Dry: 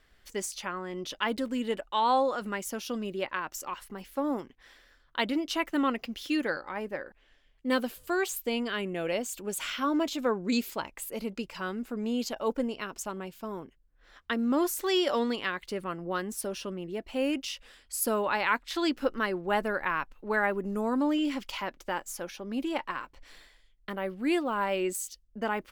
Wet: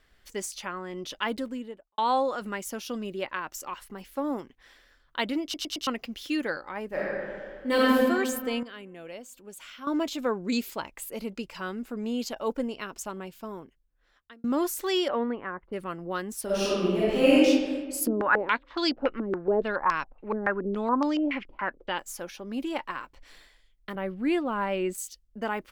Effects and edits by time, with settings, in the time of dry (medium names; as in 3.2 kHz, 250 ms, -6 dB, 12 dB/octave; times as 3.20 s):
1.28–1.98 s: studio fade out
5.43 s: stutter in place 0.11 s, 4 plays
6.87–7.97 s: reverb throw, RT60 2 s, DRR -7.5 dB
8.63–9.87 s: gain -11 dB
13.38–14.44 s: fade out
15.07–15.72 s: low-pass 2.6 kHz -> 1.1 kHz 24 dB/octave
16.45–17.45 s: reverb throw, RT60 1.5 s, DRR -10.5 dB
18.07–21.99 s: step-sequenced low-pass 7.1 Hz 310–5300 Hz
23.95–24.98 s: tone controls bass +6 dB, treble -8 dB